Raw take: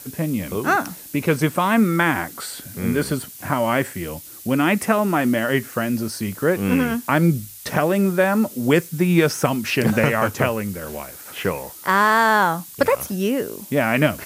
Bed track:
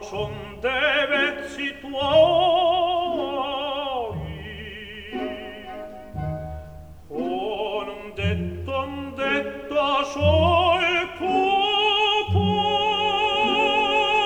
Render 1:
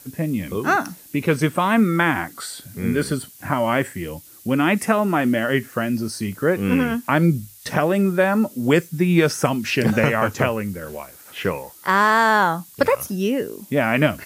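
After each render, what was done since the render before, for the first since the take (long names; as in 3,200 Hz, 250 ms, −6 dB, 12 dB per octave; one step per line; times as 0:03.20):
noise reduction from a noise print 6 dB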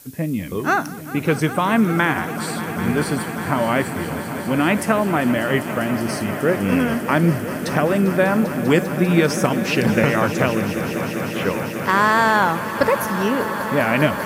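echo that builds up and dies away 198 ms, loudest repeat 5, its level −14.5 dB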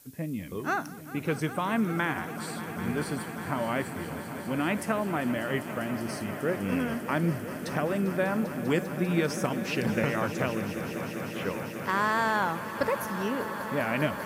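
level −10.5 dB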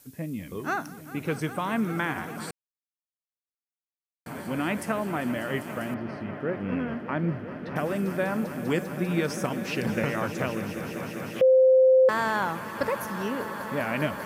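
0:02.51–0:04.26: silence
0:05.94–0:07.76: high-frequency loss of the air 340 metres
0:11.41–0:12.09: beep over 520 Hz −14 dBFS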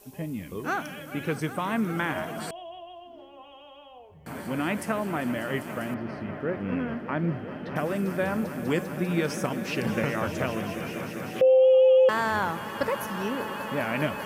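mix in bed track −22 dB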